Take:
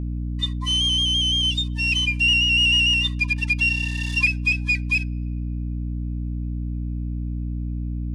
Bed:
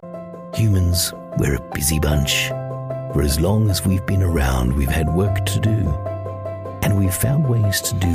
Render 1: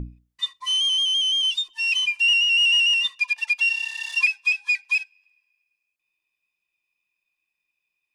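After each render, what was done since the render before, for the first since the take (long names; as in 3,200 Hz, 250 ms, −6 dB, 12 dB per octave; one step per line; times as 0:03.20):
mains-hum notches 60/120/180/240/300 Hz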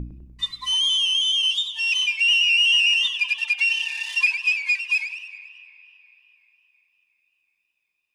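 spring reverb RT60 3.9 s, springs 33/46 ms, chirp 65 ms, DRR 13.5 dB
feedback echo with a swinging delay time 100 ms, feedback 54%, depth 196 cents, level −10 dB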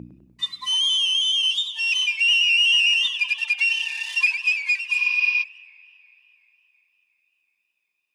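0:04.96–0:05.41: healed spectral selection 220–6,200 Hz before
high-pass filter 160 Hz 12 dB per octave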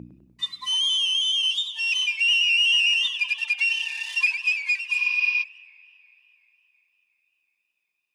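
level −2 dB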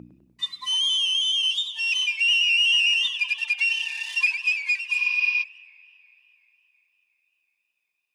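low-shelf EQ 250 Hz −5.5 dB
notch filter 1,300 Hz, Q 29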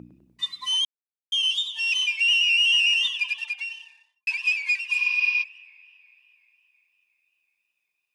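0:00.85–0:01.32: silence
0:03.09–0:04.27: fade out and dull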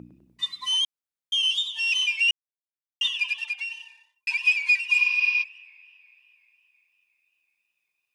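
0:02.31–0:03.01: silence
0:03.71–0:05.04: comb filter 2.1 ms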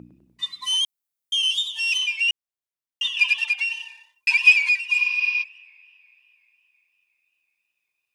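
0:00.62–0:01.98: high-shelf EQ 7,600 Hz +11.5 dB
0:03.17–0:04.69: clip gain +7.5 dB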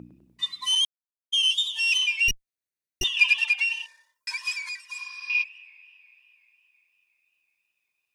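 0:00.75–0:01.62: downward expander −23 dBFS
0:02.28–0:03.04: lower of the sound and its delayed copy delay 0.47 ms
0:03.86–0:05.30: phaser with its sweep stopped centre 540 Hz, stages 8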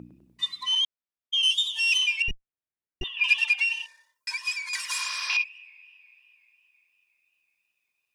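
0:00.63–0:01.43: low-pass filter 3,900 Hz
0:02.22–0:03.24: high-frequency loss of the air 460 metres
0:04.73–0:05.37: every bin compressed towards the loudest bin 2 to 1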